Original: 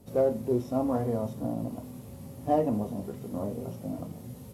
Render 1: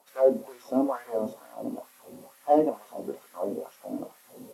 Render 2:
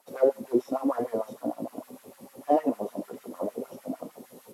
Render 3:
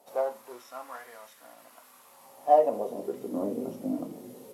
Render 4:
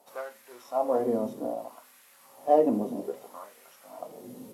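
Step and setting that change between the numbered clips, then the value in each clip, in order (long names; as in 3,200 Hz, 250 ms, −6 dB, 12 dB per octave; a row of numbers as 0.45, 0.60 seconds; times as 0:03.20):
auto-filter high-pass, speed: 2.2, 6.6, 0.2, 0.62 Hertz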